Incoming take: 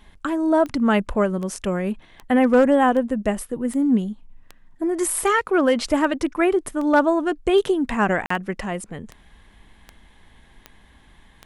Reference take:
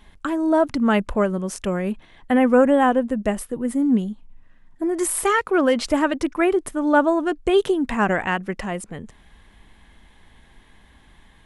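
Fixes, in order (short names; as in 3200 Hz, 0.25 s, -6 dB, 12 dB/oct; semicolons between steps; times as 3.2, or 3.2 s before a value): clip repair -8 dBFS; de-click; interpolate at 8.26, 44 ms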